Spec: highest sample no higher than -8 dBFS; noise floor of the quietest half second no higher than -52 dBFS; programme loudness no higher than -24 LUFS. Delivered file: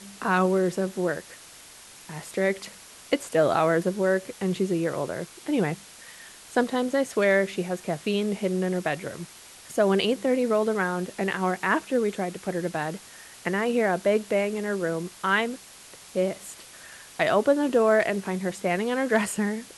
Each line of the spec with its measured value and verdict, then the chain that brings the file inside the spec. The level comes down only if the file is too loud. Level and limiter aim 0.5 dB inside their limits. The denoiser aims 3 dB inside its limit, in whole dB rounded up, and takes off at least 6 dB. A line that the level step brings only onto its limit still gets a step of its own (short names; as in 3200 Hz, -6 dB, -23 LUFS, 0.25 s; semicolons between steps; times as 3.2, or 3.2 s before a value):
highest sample -9.0 dBFS: OK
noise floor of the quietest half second -48 dBFS: fail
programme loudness -26.0 LUFS: OK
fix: denoiser 7 dB, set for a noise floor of -48 dBFS